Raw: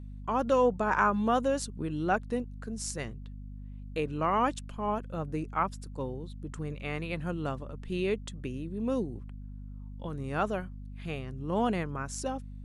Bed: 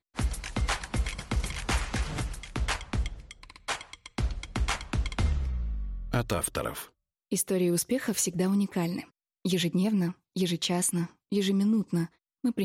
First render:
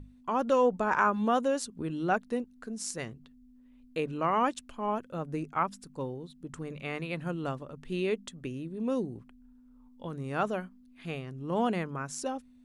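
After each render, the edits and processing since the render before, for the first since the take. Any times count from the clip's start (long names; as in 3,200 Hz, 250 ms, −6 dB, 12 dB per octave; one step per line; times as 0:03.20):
mains-hum notches 50/100/150/200 Hz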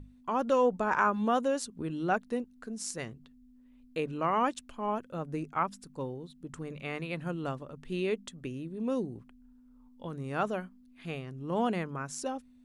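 level −1 dB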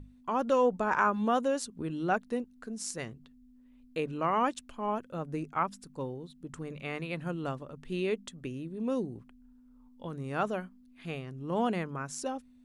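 no processing that can be heard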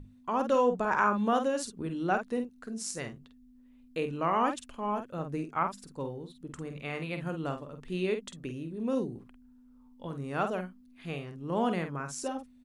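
double-tracking delay 49 ms −7.5 dB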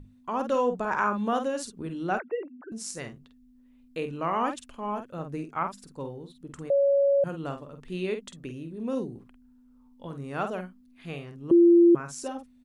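0:02.19–0:02.72: three sine waves on the formant tracks
0:06.70–0:07.24: beep over 559 Hz −18.5 dBFS
0:11.51–0:11.95: beep over 343 Hz −13 dBFS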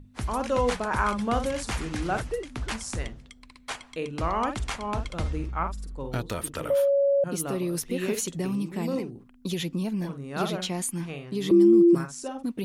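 mix in bed −3 dB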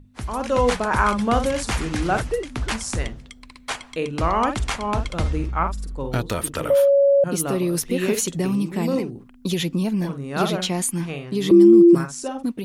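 automatic gain control gain up to 6.5 dB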